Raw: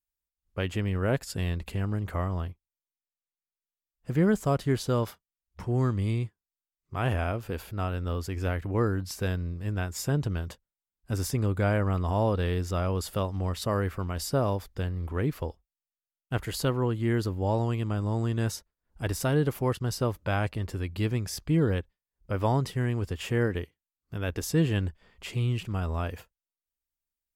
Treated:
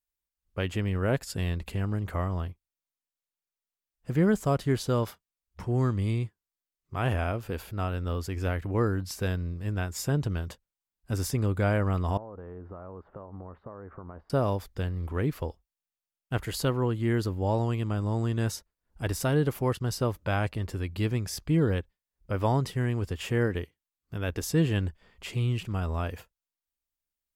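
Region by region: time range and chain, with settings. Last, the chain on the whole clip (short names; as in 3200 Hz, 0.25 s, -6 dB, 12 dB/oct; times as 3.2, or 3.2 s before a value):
12.17–14.3 low shelf 160 Hz -11.5 dB + compressor 16:1, threshold -37 dBFS + LPF 1300 Hz 24 dB/oct
whole clip: dry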